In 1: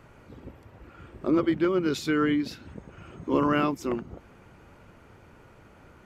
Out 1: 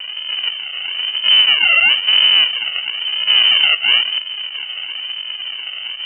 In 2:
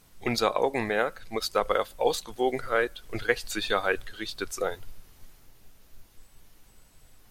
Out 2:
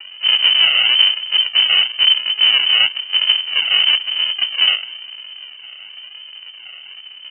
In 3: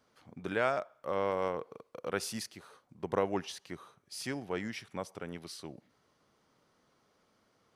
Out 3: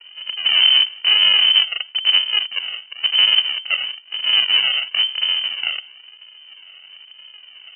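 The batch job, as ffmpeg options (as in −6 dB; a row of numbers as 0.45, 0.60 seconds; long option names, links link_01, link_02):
-filter_complex "[0:a]asplit=2[link_01][link_02];[link_02]highpass=frequency=720:poles=1,volume=38dB,asoftclip=type=tanh:threshold=-7dB[link_03];[link_01][link_03]amix=inputs=2:normalize=0,lowpass=frequency=1500:poles=1,volume=-6dB,aresample=16000,acrusher=samples=32:mix=1:aa=0.000001:lfo=1:lforange=19.2:lforate=1,aresample=44100,lowpass=frequency=2600:width_type=q:width=0.5098,lowpass=frequency=2600:width_type=q:width=0.6013,lowpass=frequency=2600:width_type=q:width=0.9,lowpass=frequency=2600:width_type=q:width=2.563,afreqshift=-3100,aemphasis=mode=production:type=75kf,volume=-2dB"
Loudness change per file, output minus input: +13.5, +16.0, +21.5 LU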